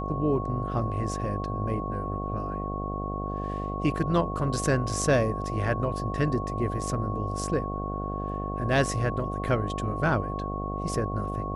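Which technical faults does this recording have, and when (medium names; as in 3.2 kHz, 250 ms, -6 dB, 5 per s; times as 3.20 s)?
buzz 50 Hz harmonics 15 -33 dBFS
whine 1.1 kHz -34 dBFS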